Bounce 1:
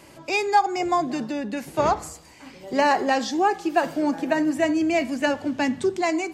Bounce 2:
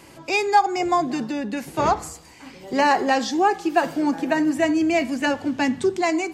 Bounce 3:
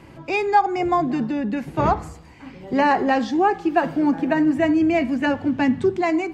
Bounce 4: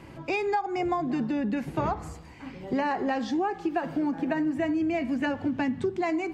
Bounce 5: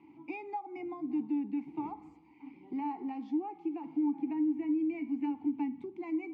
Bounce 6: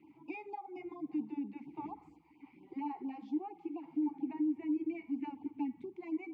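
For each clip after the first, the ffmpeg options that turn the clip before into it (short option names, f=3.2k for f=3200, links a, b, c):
-af "bandreject=f=600:w=12,volume=2dB"
-af "bass=f=250:g=8,treble=f=4k:g=-14"
-af "acompressor=threshold=-23dB:ratio=6,volume=-1.5dB"
-filter_complex "[0:a]asplit=3[a][b][c];[a]bandpass=f=300:t=q:w=8,volume=0dB[d];[b]bandpass=f=870:t=q:w=8,volume=-6dB[e];[c]bandpass=f=2.24k:t=q:w=8,volume=-9dB[f];[d][e][f]amix=inputs=3:normalize=0,volume=-1.5dB"
-af "afftfilt=real='re*(1-between(b*sr/1024,210*pow(1800/210,0.5+0.5*sin(2*PI*4.3*pts/sr))/1.41,210*pow(1800/210,0.5+0.5*sin(2*PI*4.3*pts/sr))*1.41))':imag='im*(1-between(b*sr/1024,210*pow(1800/210,0.5+0.5*sin(2*PI*4.3*pts/sr))/1.41,210*pow(1800/210,0.5+0.5*sin(2*PI*4.3*pts/sr))*1.41))':win_size=1024:overlap=0.75,volume=-2.5dB"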